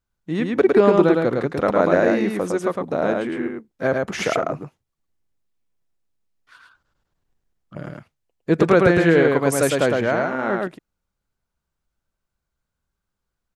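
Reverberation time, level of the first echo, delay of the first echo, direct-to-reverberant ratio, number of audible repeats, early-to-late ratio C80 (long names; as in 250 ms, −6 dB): no reverb audible, −3.0 dB, 108 ms, no reverb audible, 1, no reverb audible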